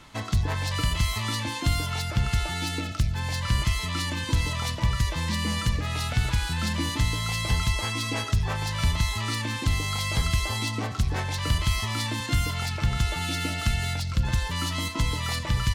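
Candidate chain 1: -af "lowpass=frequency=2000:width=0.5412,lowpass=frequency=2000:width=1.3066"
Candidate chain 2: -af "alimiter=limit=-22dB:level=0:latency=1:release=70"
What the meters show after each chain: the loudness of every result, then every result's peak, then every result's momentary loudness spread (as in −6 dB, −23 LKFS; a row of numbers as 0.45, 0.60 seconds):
−28.5, −31.0 LKFS; −14.0, −22.0 dBFS; 4, 1 LU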